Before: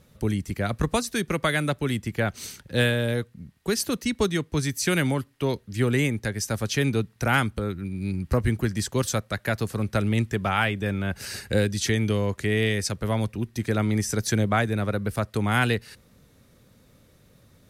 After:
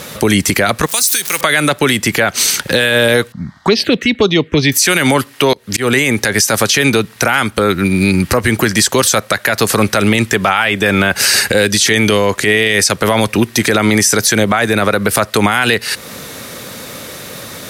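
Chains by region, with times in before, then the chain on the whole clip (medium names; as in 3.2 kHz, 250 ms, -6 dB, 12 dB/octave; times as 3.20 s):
0.86–1.41 s: jump at every zero crossing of -36 dBFS + pre-emphasis filter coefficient 0.9
3.32–4.72 s: touch-sensitive phaser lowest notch 400 Hz, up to 1.9 kHz, full sweep at -19 dBFS + distance through air 180 m
5.53–6.33 s: compression 3:1, threshold -26 dBFS + slow attack 265 ms
whole clip: high-pass 720 Hz 6 dB/octave; compression 2:1, threshold -46 dBFS; loudness maximiser +35.5 dB; trim -1 dB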